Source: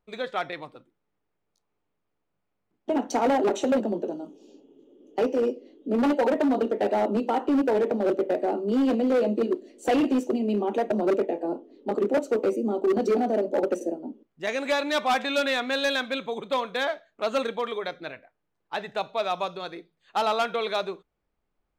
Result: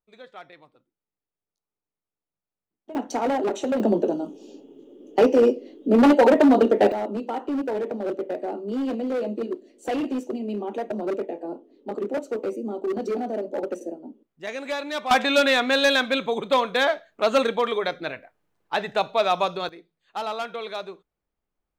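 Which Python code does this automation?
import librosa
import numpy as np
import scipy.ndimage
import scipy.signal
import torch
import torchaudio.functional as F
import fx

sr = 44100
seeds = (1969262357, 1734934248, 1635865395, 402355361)

y = fx.gain(x, sr, db=fx.steps((0.0, -13.5), (2.95, -1.5), (3.8, 7.5), (6.92, -4.0), (15.11, 6.0), (19.69, -5.0)))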